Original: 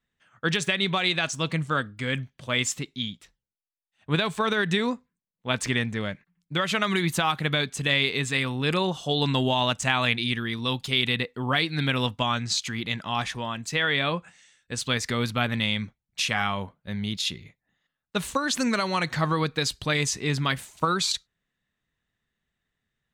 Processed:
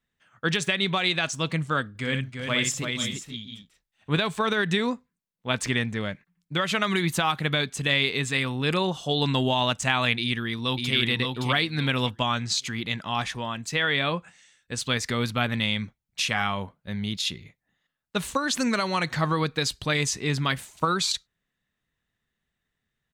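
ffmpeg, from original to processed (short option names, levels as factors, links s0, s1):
-filter_complex "[0:a]asettb=1/sr,asplit=3[s0][s1][s2];[s0]atrim=end=1.894[s3];[s1]atrim=start=1.89:end=4.18,asetpts=PTS-STARTPTS,afade=t=in:d=0.004:c=qsin,afade=t=out:st=2.286:d=0.004:c=qsin,aecho=1:1:60|332|340|483|518:0.447|0.119|0.447|0.211|0.188,atrim=end_sample=100989[s4];[s2]atrim=start=4.176[s5];[s3][s4]acrossfade=d=0.004:c1=hsin:c2=qsin[s6];[s6][s5]acrossfade=d=0.004:c1=qsin:c2=hsin,asplit=2[s7][s8];[s8]afade=t=in:st=10.2:d=0.01,afade=t=out:st=10.95:d=0.01,aecho=0:1:570|1140|1710:0.668344|0.133669|0.0267338[s9];[s7][s9]amix=inputs=2:normalize=0"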